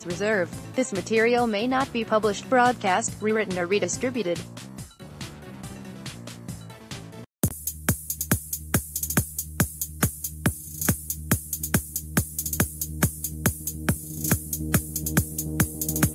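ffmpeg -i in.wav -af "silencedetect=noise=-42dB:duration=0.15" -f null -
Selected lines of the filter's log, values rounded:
silence_start: 7.24
silence_end: 7.43 | silence_duration: 0.19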